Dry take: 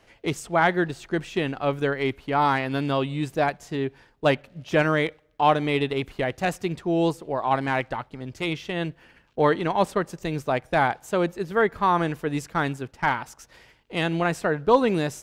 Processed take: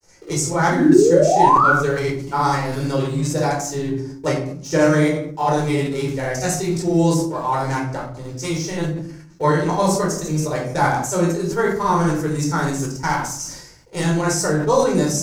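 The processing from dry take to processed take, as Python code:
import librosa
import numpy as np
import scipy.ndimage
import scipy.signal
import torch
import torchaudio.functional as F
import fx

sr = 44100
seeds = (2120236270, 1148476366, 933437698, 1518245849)

p1 = fx.high_shelf_res(x, sr, hz=4300.0, db=12.0, q=3.0)
p2 = np.where(np.abs(p1) >= 10.0 ** (-30.5 / 20.0), p1, 0.0)
p3 = p1 + F.gain(torch.from_numpy(p2), -9.0).numpy()
p4 = fx.granulator(p3, sr, seeds[0], grain_ms=100.0, per_s=20.0, spray_ms=38.0, spread_st=0)
p5 = fx.spec_paint(p4, sr, seeds[1], shape='rise', start_s=0.71, length_s=1.0, low_hz=240.0, high_hz=1500.0, level_db=-16.0)
p6 = fx.room_shoebox(p5, sr, seeds[2], volume_m3=760.0, walls='furnished', distance_m=4.5)
p7 = fx.sustainer(p6, sr, db_per_s=62.0)
y = F.gain(torch.from_numpy(p7), -4.5).numpy()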